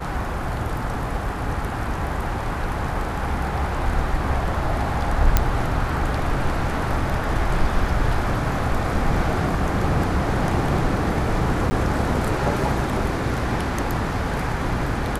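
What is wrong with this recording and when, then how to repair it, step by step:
0:05.37: click −1 dBFS
0:11.70–0:11.71: drop-out 10 ms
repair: click removal
repair the gap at 0:11.70, 10 ms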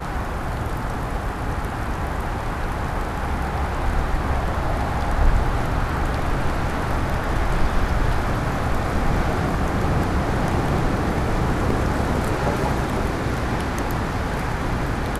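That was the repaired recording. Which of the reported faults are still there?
none of them is left

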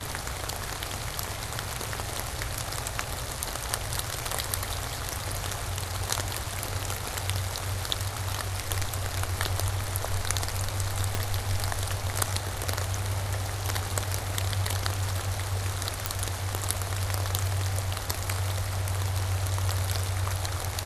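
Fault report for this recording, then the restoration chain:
0:11.15: click −11 dBFS
0:16.06: click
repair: click removal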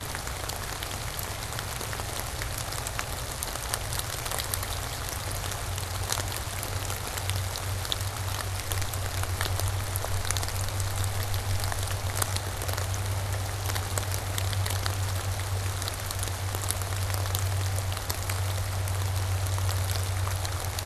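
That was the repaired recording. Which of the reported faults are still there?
0:11.15: click

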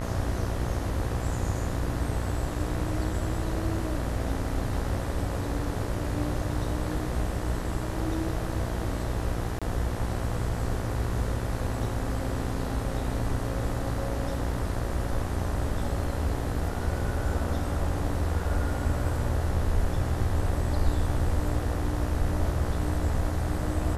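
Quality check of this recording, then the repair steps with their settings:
mains buzz 60 Hz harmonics 33 −33 dBFS
0:09.59–0:09.62: drop-out 26 ms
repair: hum removal 60 Hz, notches 33
repair the gap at 0:09.59, 26 ms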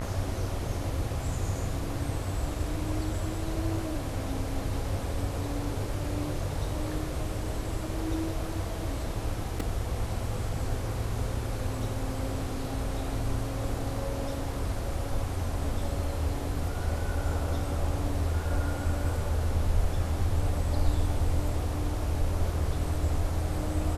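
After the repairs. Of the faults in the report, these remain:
none of them is left

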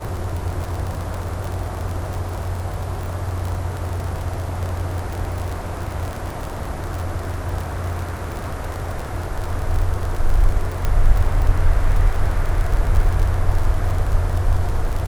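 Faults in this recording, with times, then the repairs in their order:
surface crackle 38 per second −22 dBFS
0:10.85: click −8 dBFS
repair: click removal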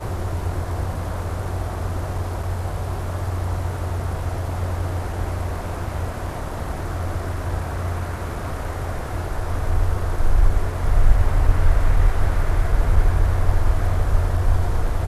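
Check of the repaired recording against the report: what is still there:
0:10.85: click

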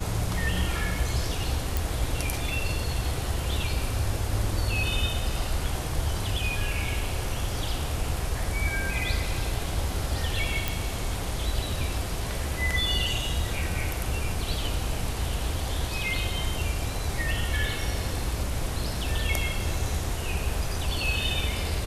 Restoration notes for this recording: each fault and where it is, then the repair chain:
0:01.77: click
0:10.68: click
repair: click removal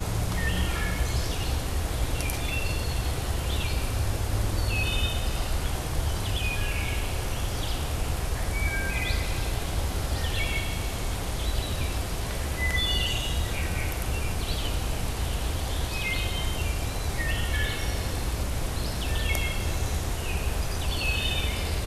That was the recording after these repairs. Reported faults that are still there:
none of them is left

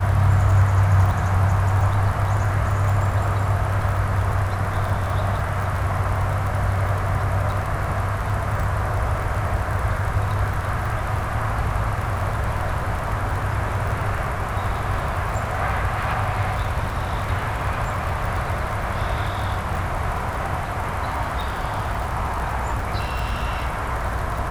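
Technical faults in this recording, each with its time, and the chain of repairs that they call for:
surface crackle 27 per second −26 dBFS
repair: click removal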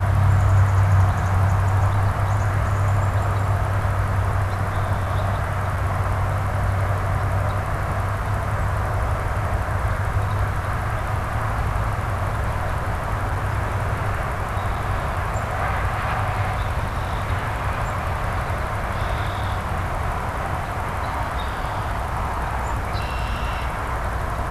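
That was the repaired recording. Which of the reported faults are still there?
none of them is left

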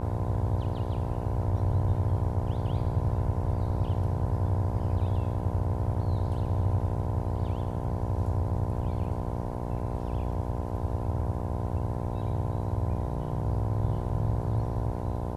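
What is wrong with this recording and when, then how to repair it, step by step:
mains buzz 60 Hz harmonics 17 −34 dBFS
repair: hum removal 60 Hz, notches 17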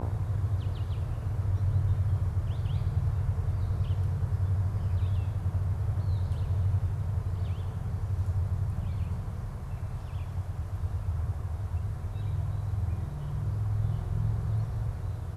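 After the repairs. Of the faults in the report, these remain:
none of them is left

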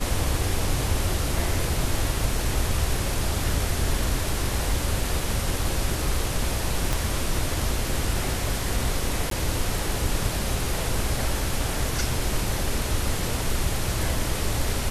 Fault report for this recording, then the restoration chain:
0:06.93: click
0:09.30–0:09.31: drop-out 13 ms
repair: click removal
repair the gap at 0:09.30, 13 ms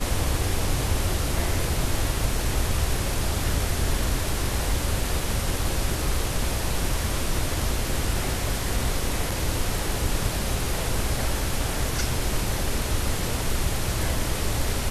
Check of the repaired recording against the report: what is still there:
0:06.93: click

